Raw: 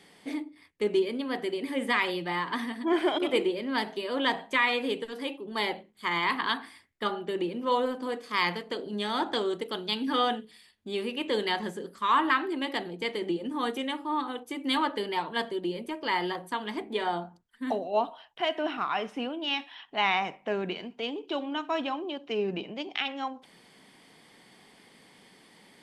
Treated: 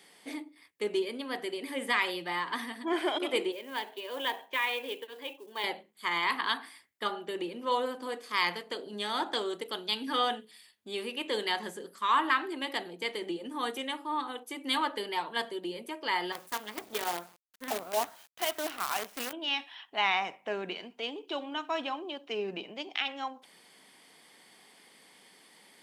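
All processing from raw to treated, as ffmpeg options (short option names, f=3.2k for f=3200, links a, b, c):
-filter_complex "[0:a]asettb=1/sr,asplit=3[a][b][c];[a]atrim=end=3.524[d];[b]atrim=start=3.52:end=5.64,asetpts=PTS-STARTPTS,afade=t=in:d=0.004:c=qsin,afade=t=out:st=2.116:d=0.004:c=qsin,highpass=410,equalizer=f=680:t=q:w=4:g=-5,equalizer=f=1.3k:t=q:w=4:g=-9,equalizer=f=2k:t=q:w=4:g=-5,lowpass=f=3.4k:w=0.5412,lowpass=f=3.4k:w=1.3066,acrusher=bits=6:mode=log:mix=0:aa=0.000001[e];[c]atrim=start=5.636[f];[d][e]acrossfade=d=0.004:c1=hsin:c2=qsin[g];[g][f]acrossfade=d=0.004:c1=qsin:c2=hsin,asettb=1/sr,asplit=3[h][i][j];[h]atrim=end=16.324[k];[i]atrim=start=16.32:end=19.33,asetpts=PTS-STARTPTS,afade=t=in:d=0.004:c=qsin,afade=t=out:st=3.006:d=0.004:c=qsin,aeval=exprs='if(lt(val(0),0),0.708*val(0),val(0))':c=same,highshelf=f=4.7k:g=-6,acrusher=bits=6:dc=4:mix=0:aa=0.000001[l];[j]atrim=start=19.326[m];[k][l]acrossfade=d=0.004:c1=hsin:c2=qsin[n];[n][m]acrossfade=d=0.004:c1=qsin:c2=hsin,highpass=f=440:p=1,highshelf=f=8.4k:g=9,volume=-1.5dB"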